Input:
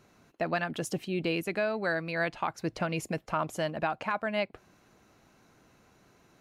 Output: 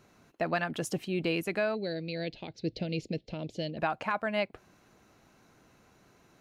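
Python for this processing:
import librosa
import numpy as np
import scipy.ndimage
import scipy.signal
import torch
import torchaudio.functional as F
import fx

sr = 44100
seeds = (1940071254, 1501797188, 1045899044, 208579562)

y = fx.curve_eq(x, sr, hz=(490.0, 1200.0, 2100.0, 4200.0, 10000.0), db=(0, -28, -8, 5, -26), at=(1.74, 3.77), fade=0.02)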